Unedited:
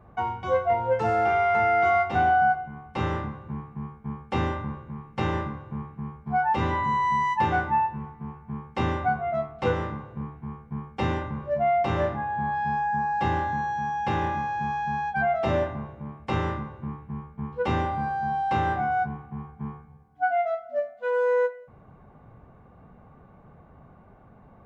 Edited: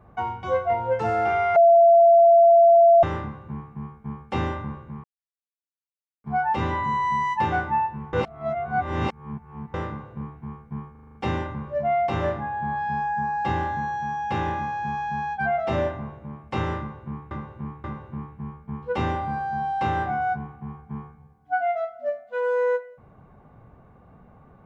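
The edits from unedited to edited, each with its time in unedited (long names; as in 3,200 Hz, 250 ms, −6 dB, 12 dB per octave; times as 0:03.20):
0:01.56–0:03.03: beep over 679 Hz −10.5 dBFS
0:05.04–0:06.24: silence
0:08.13–0:09.74: reverse
0:10.91: stutter 0.04 s, 7 plays
0:16.54–0:17.07: repeat, 3 plays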